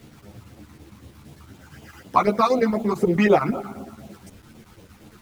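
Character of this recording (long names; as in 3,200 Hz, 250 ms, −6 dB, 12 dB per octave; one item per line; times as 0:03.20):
phaser sweep stages 12, 4 Hz, lowest notch 510–1,800 Hz
chopped level 8.8 Hz, depth 60%, duty 75%
a quantiser's noise floor 10 bits, dither none
a shimmering, thickened sound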